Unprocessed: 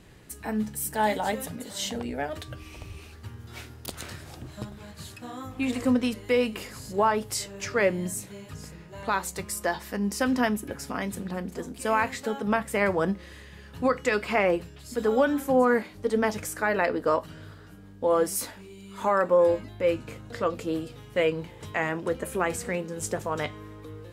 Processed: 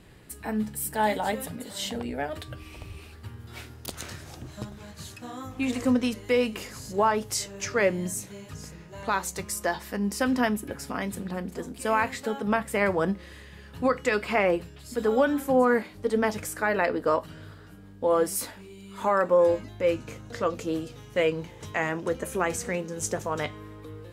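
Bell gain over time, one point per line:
bell 6200 Hz 0.31 oct
3.44 s -5.5 dB
4.02 s +5 dB
9.53 s +5 dB
9.94 s -2 dB
19.02 s -2 dB
19.53 s +7.5 dB
23.19 s +7.5 dB
23.61 s -2.5 dB

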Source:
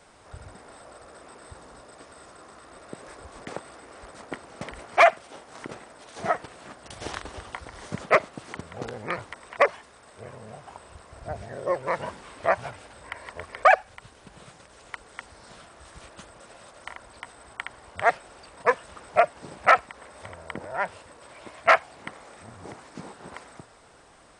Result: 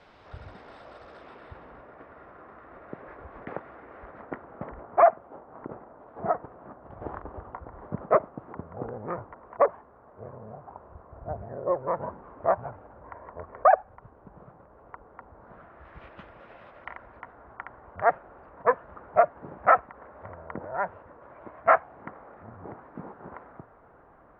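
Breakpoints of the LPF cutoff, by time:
LPF 24 dB/oct
1.13 s 4200 Hz
1.93 s 2000 Hz
4.01 s 2000 Hz
4.94 s 1200 Hz
15.34 s 1200 Hz
16.07 s 2600 Hz
16.68 s 2600 Hz
17.39 s 1500 Hz

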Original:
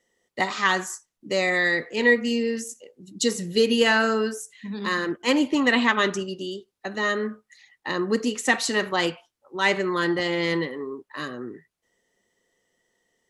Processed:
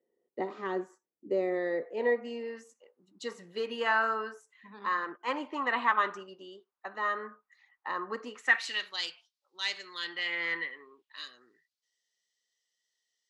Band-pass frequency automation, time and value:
band-pass, Q 2.3
1.47 s 390 Hz
2.62 s 1100 Hz
8.35 s 1100 Hz
8.91 s 4400 Hz
9.94 s 4400 Hz
10.45 s 1600 Hz
11.34 s 4600 Hz

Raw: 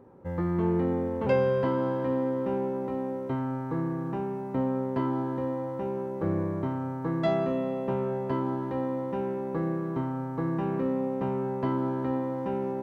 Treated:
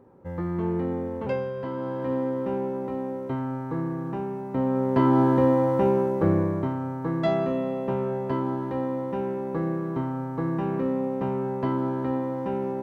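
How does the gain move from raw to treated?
1.18 s -1 dB
1.53 s -7.5 dB
2.13 s +1 dB
4.5 s +1 dB
5.23 s +11 dB
5.87 s +11 dB
6.76 s +2 dB

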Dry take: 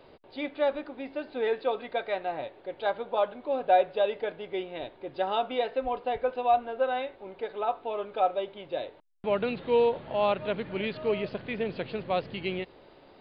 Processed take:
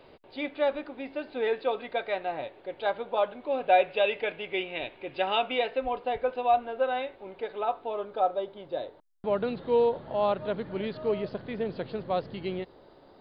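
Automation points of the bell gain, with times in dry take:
bell 2500 Hz 0.73 oct
3.39 s +2.5 dB
3.96 s +13.5 dB
5.37 s +13.5 dB
5.96 s +1.5 dB
7.61 s +1.5 dB
8.2 s -10 dB

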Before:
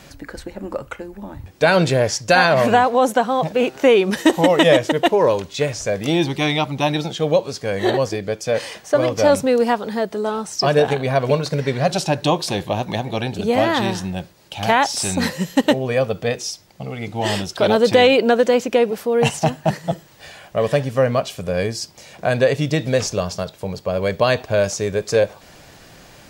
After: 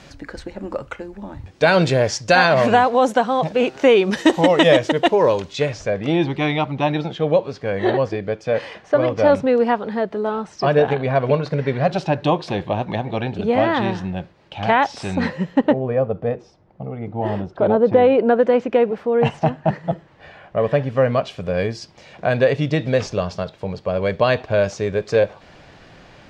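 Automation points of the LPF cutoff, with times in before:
5.51 s 6300 Hz
5.96 s 2600 Hz
15.17 s 2600 Hz
16 s 1000 Hz
17.92 s 1000 Hz
18.62 s 2000 Hz
20.64 s 2000 Hz
21.13 s 3500 Hz

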